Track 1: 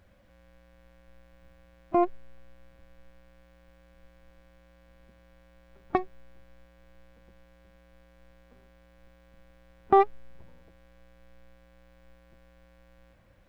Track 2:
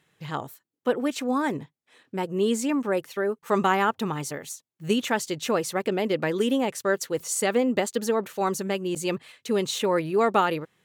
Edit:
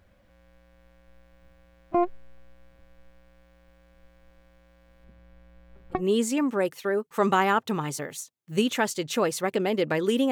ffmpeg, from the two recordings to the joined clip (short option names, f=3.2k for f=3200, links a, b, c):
-filter_complex "[0:a]asettb=1/sr,asplit=3[a][b][c];[a]atrim=end=5.044[d];[b]atrim=start=5.04:end=6.03,asetpts=PTS-STARTPTS,afade=t=in:d=0.004:c=qsin,afade=t=out:st=0.986:d=0.004:c=qsin,bass=f=250:g=6,treble=f=4k:g=-5[e];[c]atrim=start=6.026[f];[d][e]acrossfade=d=0.004:c1=hsin:c2=qsin[g];[g][f]acrossfade=d=0.004:c1=qsin:c2=hsin,apad=whole_dur=10.31,atrim=end=10.31,atrim=end=6.03,asetpts=PTS-STARTPTS[h];[1:a]atrim=start=2.23:end=6.63,asetpts=PTS-STARTPTS[i];[h][i]acrossfade=d=0.12:c1=tri:c2=tri"